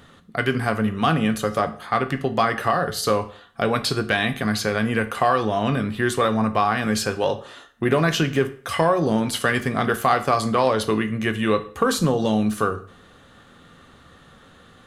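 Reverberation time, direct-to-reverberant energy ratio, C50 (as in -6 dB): 0.45 s, 9.5 dB, 14.5 dB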